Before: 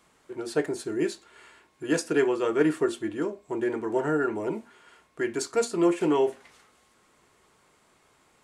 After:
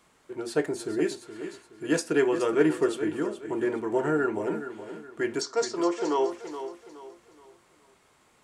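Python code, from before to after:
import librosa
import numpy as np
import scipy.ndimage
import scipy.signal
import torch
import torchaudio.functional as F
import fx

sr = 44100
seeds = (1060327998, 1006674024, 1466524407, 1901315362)

y = fx.cabinet(x, sr, low_hz=400.0, low_slope=12, high_hz=6900.0, hz=(1000.0, 1600.0, 2500.0, 5500.0), db=(3, -3, -9, 9), at=(5.4, 6.3), fade=0.02)
y = fx.echo_feedback(y, sr, ms=421, feedback_pct=35, wet_db=-11.0)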